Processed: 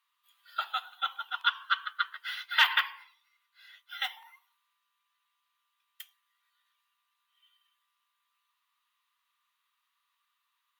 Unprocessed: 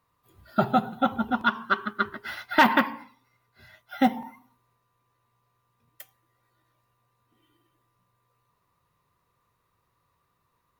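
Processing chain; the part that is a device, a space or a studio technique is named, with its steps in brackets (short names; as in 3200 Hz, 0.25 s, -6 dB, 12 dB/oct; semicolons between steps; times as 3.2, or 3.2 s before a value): headphones lying on a table (HPF 1200 Hz 24 dB/oct; bell 3200 Hz +11 dB 0.59 oct); notch 5400 Hz, Q 29; gain -3.5 dB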